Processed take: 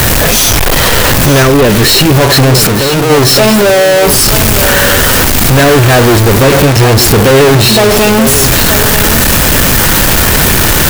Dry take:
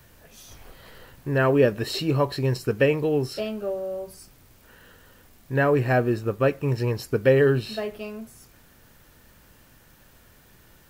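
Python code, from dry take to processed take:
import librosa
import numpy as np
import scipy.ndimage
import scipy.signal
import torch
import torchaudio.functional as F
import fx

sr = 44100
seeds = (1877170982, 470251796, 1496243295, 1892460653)

y = x + 0.5 * 10.0 ** (-23.0 / 20.0) * np.sign(x)
y = fx.peak_eq(y, sr, hz=810.0, db=-14.5, octaves=0.55, at=(1.42, 2.15))
y = fx.leveller(y, sr, passes=5)
y = fx.clip_hard(y, sr, threshold_db=-13.5, at=(2.67, 3.1))
y = y + 10.0 ** (-9.5 / 20.0) * np.pad(y, (int(927 * sr / 1000.0), 0))[:len(y)]
y = F.gain(torch.from_numpy(y), 3.5).numpy()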